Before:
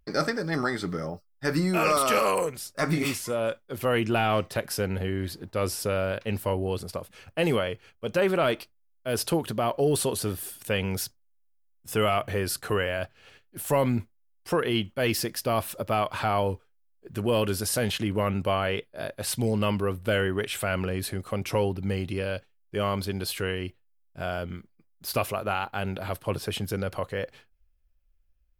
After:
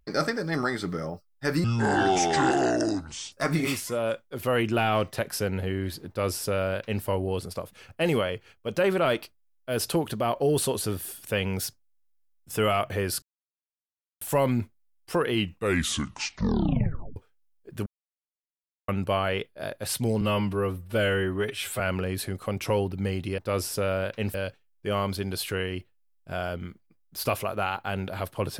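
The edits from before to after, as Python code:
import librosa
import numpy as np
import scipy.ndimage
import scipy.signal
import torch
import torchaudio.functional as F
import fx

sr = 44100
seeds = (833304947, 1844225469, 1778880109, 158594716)

y = fx.edit(x, sr, fx.speed_span(start_s=1.64, length_s=1.06, speed=0.63),
    fx.duplicate(start_s=5.46, length_s=0.96, to_s=22.23),
    fx.silence(start_s=12.6, length_s=0.99),
    fx.tape_stop(start_s=14.69, length_s=1.85),
    fx.silence(start_s=17.24, length_s=1.02),
    fx.stretch_span(start_s=19.59, length_s=1.06, factor=1.5), tone=tone)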